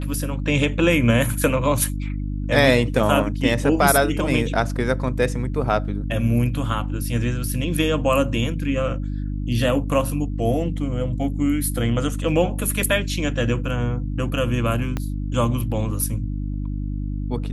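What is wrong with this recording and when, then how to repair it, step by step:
hum 50 Hz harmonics 6 -26 dBFS
14.97 pop -12 dBFS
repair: de-click; de-hum 50 Hz, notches 6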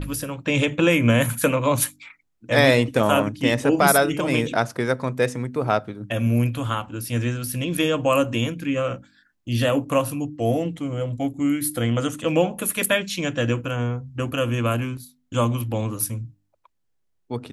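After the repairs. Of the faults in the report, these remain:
14.97 pop

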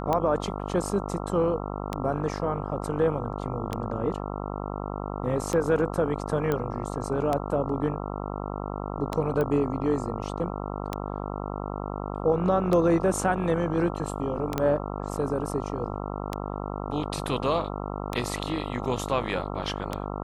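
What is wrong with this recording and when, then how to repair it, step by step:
buzz 50 Hz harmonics 27 -33 dBFS
tick 33 1/3 rpm -13 dBFS
6.52 pop -14 dBFS
9.41 pop -17 dBFS
14.58 pop -12 dBFS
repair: de-click; de-hum 50 Hz, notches 27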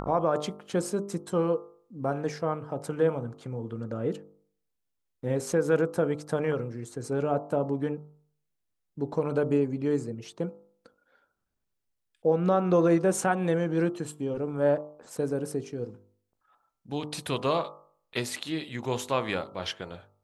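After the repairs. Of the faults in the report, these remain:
9.41 pop

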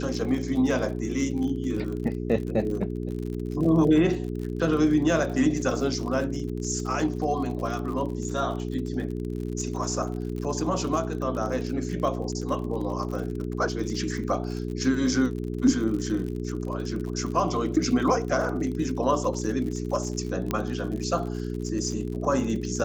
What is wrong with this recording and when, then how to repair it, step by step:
crackle 52/s -33 dBFS
hum 60 Hz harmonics 7 -31 dBFS
20.51 pop -12 dBFS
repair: de-click; de-hum 60 Hz, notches 7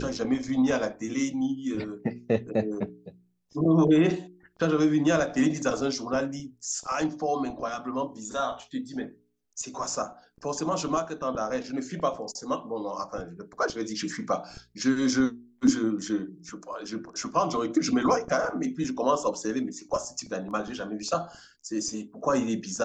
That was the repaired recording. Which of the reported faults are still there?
20.51 pop

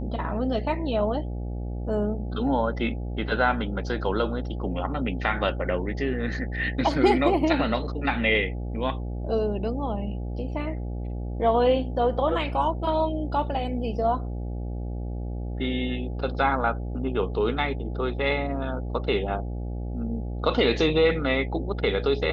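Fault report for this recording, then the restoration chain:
buzz 60 Hz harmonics 14 -31 dBFS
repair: de-hum 60 Hz, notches 14

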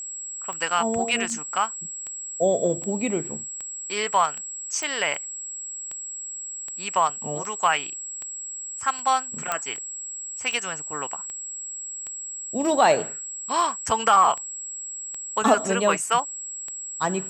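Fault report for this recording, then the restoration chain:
tick 78 rpm -21 dBFS
tone 7700 Hz -32 dBFS
4.83 pop
9.52 pop -9 dBFS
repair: de-click; notch 7700 Hz, Q 30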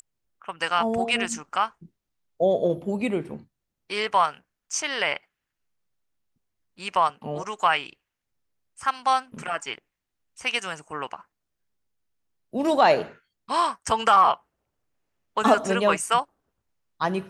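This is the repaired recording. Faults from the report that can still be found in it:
none

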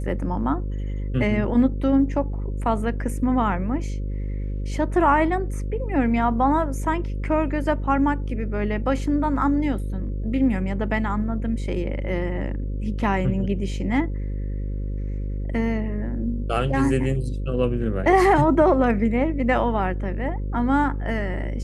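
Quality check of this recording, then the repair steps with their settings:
buzz 50 Hz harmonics 11 -27 dBFS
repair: de-hum 50 Hz, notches 11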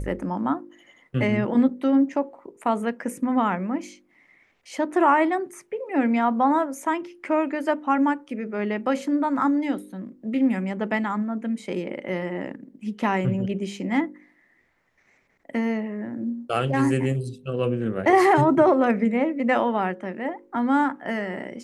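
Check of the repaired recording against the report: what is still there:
none

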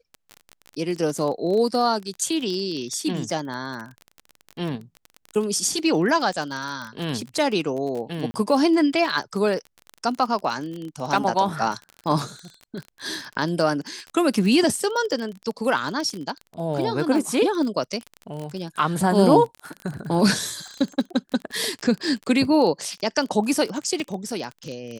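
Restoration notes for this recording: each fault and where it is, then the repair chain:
crackle 29/s -28 dBFS
8.31–8.34 gap 30 ms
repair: de-click; interpolate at 8.31, 30 ms

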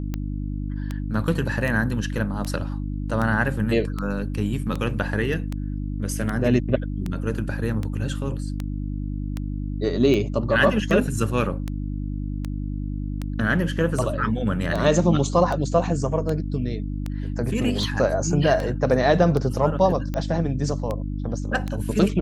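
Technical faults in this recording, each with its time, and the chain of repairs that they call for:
hum 50 Hz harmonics 6 -28 dBFS
tick 78 rpm -15 dBFS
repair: de-click; de-hum 50 Hz, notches 6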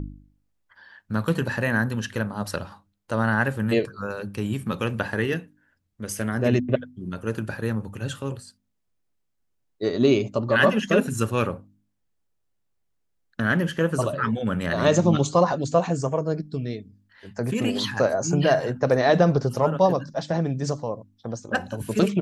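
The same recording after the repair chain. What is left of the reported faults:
none

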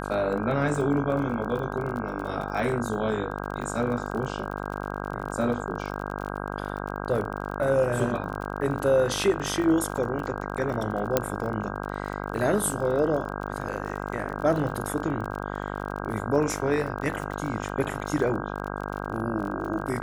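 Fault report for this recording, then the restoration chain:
buzz 50 Hz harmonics 32 -33 dBFS
crackle 33/s -33 dBFS
11.17 pop -6 dBFS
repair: de-click; de-hum 50 Hz, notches 32

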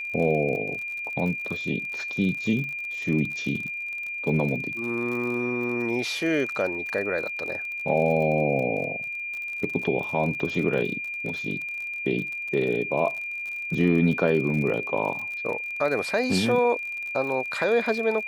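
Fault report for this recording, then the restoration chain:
crackle 43/s -32 dBFS
tone 2400 Hz -30 dBFS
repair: de-click; notch 2400 Hz, Q 30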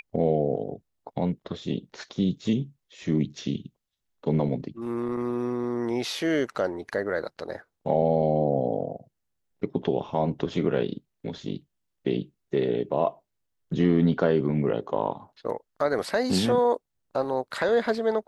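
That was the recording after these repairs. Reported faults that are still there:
none

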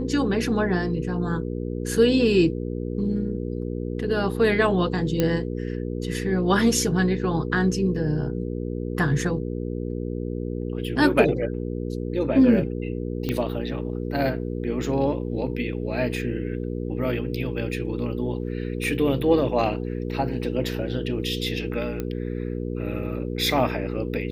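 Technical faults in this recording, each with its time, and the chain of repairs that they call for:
hum 60 Hz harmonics 8 -29 dBFS
5.2 pop -8 dBFS
13.29 pop -13 dBFS
22 pop -16 dBFS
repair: de-click; de-hum 60 Hz, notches 8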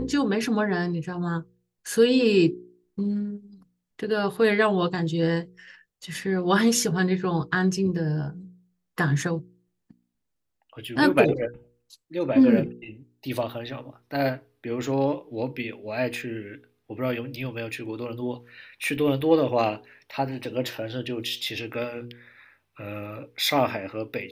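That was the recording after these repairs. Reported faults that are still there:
none

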